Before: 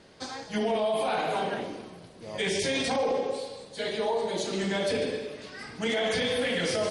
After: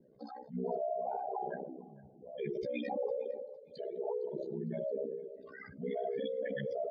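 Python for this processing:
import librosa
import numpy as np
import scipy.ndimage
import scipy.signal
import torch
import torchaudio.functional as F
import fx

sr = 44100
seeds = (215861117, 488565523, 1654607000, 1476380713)

y = fx.spec_expand(x, sr, power=3.8)
y = y * np.sin(2.0 * np.pi * 32.0 * np.arange(len(y)) / sr)
y = fx.echo_feedback(y, sr, ms=457, feedback_pct=26, wet_db=-22.0)
y = F.gain(torch.from_numpy(y), -5.0).numpy()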